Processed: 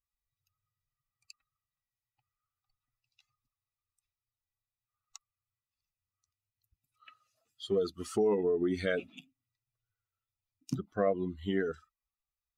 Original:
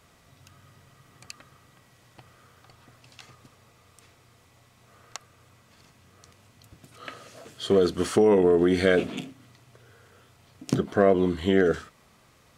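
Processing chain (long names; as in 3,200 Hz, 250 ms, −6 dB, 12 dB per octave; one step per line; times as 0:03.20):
spectral dynamics exaggerated over time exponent 2
level −6.5 dB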